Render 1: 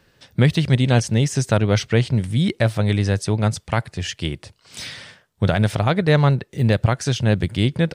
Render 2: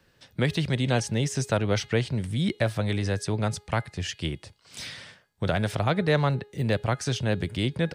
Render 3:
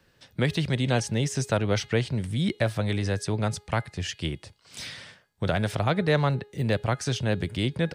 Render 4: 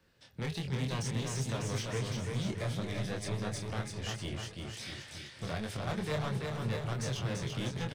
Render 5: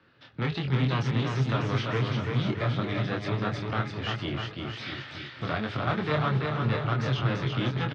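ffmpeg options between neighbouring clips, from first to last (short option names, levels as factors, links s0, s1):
-filter_complex "[0:a]bandreject=f=415.3:t=h:w=4,bandreject=f=830.6:t=h:w=4,bandreject=f=1245.9:t=h:w=4,bandreject=f=1661.2:t=h:w=4,bandreject=f=2076.5:t=h:w=4,bandreject=f=2491.8:t=h:w=4,bandreject=f=2907.1:t=h:w=4,bandreject=f=3322.4:t=h:w=4,bandreject=f=3737.7:t=h:w=4,bandreject=f=4153:t=h:w=4,bandreject=f=4568.3:t=h:w=4,acrossover=split=270|570|2000[s0][s1][s2][s3];[s0]alimiter=limit=0.133:level=0:latency=1[s4];[s4][s1][s2][s3]amix=inputs=4:normalize=0,volume=0.562"
-af anull
-filter_complex "[0:a]asoftclip=type=tanh:threshold=0.0473,flanger=delay=22.5:depth=4.3:speed=1.4,asplit=2[s0][s1];[s1]aecho=0:1:340|646|921.4|1169|1392:0.631|0.398|0.251|0.158|0.1[s2];[s0][s2]amix=inputs=2:normalize=0,volume=0.708"
-af "highpass=110,equalizer=f=130:t=q:w=4:g=5,equalizer=f=180:t=q:w=4:g=-5,equalizer=f=290:t=q:w=4:g=5,equalizer=f=500:t=q:w=4:g=-3,equalizer=f=1300:t=q:w=4:g=8,lowpass=f=3900:w=0.5412,lowpass=f=3900:w=1.3066,volume=2.37"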